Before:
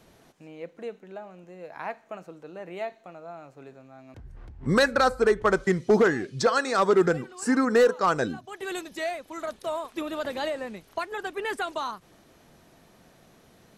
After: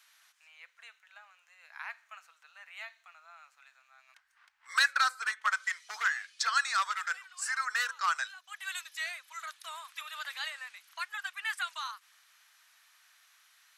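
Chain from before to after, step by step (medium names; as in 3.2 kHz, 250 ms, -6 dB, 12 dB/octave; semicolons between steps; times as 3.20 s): inverse Chebyshev high-pass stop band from 380 Hz, stop band 60 dB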